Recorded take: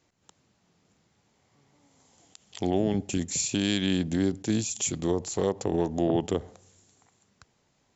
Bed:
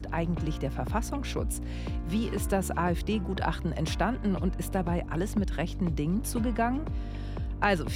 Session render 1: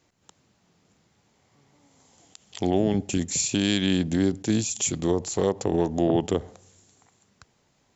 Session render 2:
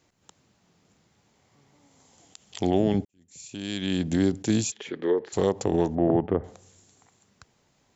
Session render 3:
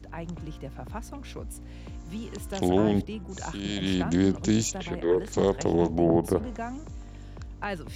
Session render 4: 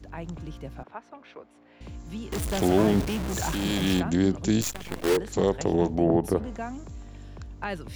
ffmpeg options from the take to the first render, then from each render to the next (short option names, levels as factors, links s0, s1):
-af "volume=1.41"
-filter_complex "[0:a]asplit=3[s0][s1][s2];[s0]afade=t=out:st=4.7:d=0.02[s3];[s1]highpass=370,equalizer=f=420:t=q:w=4:g=8,equalizer=f=700:t=q:w=4:g=-9,equalizer=f=1100:t=q:w=4:g=-4,equalizer=f=1700:t=q:w=4:g=9,equalizer=f=2600:t=q:w=4:g=-6,lowpass=f=3000:w=0.5412,lowpass=f=3000:w=1.3066,afade=t=in:st=4.7:d=0.02,afade=t=out:st=5.32:d=0.02[s4];[s2]afade=t=in:st=5.32:d=0.02[s5];[s3][s4][s5]amix=inputs=3:normalize=0,asettb=1/sr,asplit=3[s6][s7][s8];[s6]atrim=end=5.954[s9];[s7]atrim=start=5.95:end=6.44,asetpts=PTS-STARTPTS,afade=t=in:d=0.004:c=qsin,afade=t=out:st=0.486:d=0.004:c=qsin,lowpass=f=1900:w=0.5412,lowpass=f=1900:w=1.3066[s10];[s8]atrim=start=6.436[s11];[s9][s10]acrossfade=d=0.004:c1=hsin:c2=qsin[s12];[s12][s11]acrossfade=d=0.004:c1=qsin:c2=hsin,asplit=2[s13][s14];[s13]atrim=end=3.05,asetpts=PTS-STARTPTS,afade=t=out:st=3.046:d=0.004:c=hsin[s15];[s14]atrim=start=3.05,asetpts=PTS-STARTPTS,afade=t=in:d=1.09:c=qua[s16];[s15][s16]concat=n=2:v=0:a=1"
-filter_complex "[1:a]volume=0.422[s0];[0:a][s0]amix=inputs=2:normalize=0"
-filter_complex "[0:a]asettb=1/sr,asplit=3[s0][s1][s2];[s0]atrim=end=0.834[s3];[s1]atrim=start=0.83:end=1.81,asetpts=PTS-STARTPTS,afade=t=in:d=0.004:c=qsin,afade=t=out:st=0.976:d=0.004:c=qsin,highpass=460,lowpass=2300[s4];[s2]atrim=start=1.806[s5];[s3][s4]acrossfade=d=0.004:c1=hsin:c2=qsin[s6];[s6][s5]acrossfade=d=0.004:c1=qsin:c2=hsin,asettb=1/sr,asplit=3[s7][s8][s9];[s7]atrim=end=2.324[s10];[s8]atrim=start=2.32:end=4,asetpts=PTS-STARTPTS,afade=t=in:d=0.004:c=qsin,afade=t=out:st=1.676:d=0.004:c=qsin,aeval=exprs='val(0)+0.5*0.0473*sgn(val(0))':c=same[s11];[s9]atrim=start=3.996[s12];[s10][s11]acrossfade=d=0.004:c1=hsin:c2=qsin[s13];[s13][s12]acrossfade=d=0.004:c1=qsin:c2=hsin,asettb=1/sr,asplit=3[s14][s15][s16];[s14]atrim=end=4.614[s17];[s15]atrim=start=4.61:end=5.17,asetpts=PTS-STARTPTS,afade=t=in:d=0.004:c=qsin,afade=t=out:st=0.556:d=0.004:c=qsin,acrusher=bits=5:dc=4:mix=0:aa=0.000001[s18];[s16]atrim=start=5.166[s19];[s17][s18]acrossfade=d=0.004:c1=hsin:c2=qsin[s20];[s20][s19]acrossfade=d=0.004:c1=qsin:c2=hsin"